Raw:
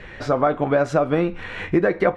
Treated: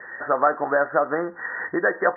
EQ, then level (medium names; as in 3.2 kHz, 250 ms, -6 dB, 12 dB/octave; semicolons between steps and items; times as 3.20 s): high-pass 430 Hz 6 dB/octave; Chebyshev low-pass 1.9 kHz, order 10; tilt EQ +4 dB/octave; +3.5 dB